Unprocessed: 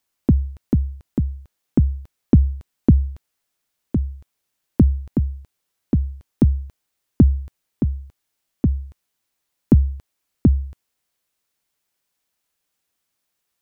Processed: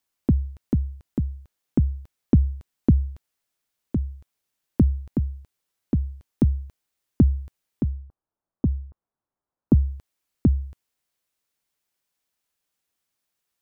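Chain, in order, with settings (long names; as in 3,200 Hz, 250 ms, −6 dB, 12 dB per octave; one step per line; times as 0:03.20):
0:07.89–0:09.79: low-pass filter 1,200 Hz → 1,300 Hz 24 dB per octave
level −4 dB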